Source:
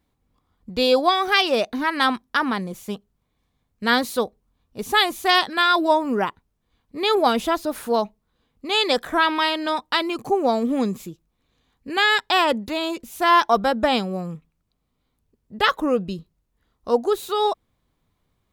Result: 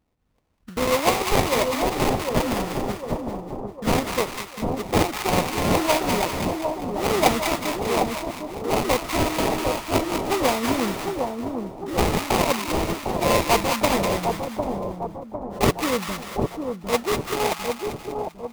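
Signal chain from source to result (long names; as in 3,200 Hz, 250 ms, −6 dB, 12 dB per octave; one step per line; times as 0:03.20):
harmonic and percussive parts rebalanced harmonic −4 dB
sample-rate reduction 1,600 Hz, jitter 20%
echo with a time of its own for lows and highs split 970 Hz, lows 753 ms, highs 197 ms, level −4 dB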